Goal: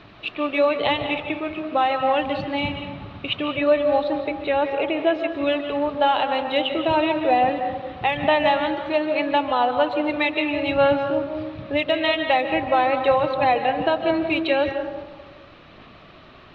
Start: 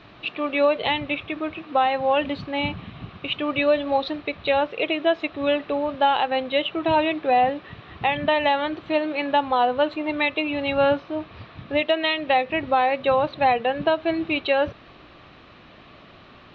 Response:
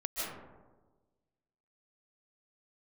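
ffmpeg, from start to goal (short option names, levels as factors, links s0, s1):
-filter_complex "[0:a]aphaser=in_gain=1:out_gain=1:delay=3.3:decay=0.24:speed=1.2:type=sinusoidal,asettb=1/sr,asplit=3[s0][s1][s2];[s0]atrim=end=3.484[s3];[s1]atrim=start=3.48:end=5.42,asetpts=PTS-STARTPTS,afade=t=in:d=0.004:c=qsin,afade=t=out:st=1.936:d=0.004:c=qsin,acrossover=split=2600[s4][s5];[s5]acompressor=threshold=0.00794:ratio=4:attack=1:release=60[s6];[s4][s6]amix=inputs=2:normalize=0[s7];[s2]atrim=start=5.416[s8];[s3][s7]acrossfade=d=0.004:c1=hsin:c2=qsin[s9];[s9][s8]acrossfade=d=0.004:c1=qsin:c2=hsin,asplit=2[s10][s11];[1:a]atrim=start_sample=2205[s12];[s11][s12]afir=irnorm=-1:irlink=0,volume=0.422[s13];[s10][s13]amix=inputs=2:normalize=0,volume=0.75"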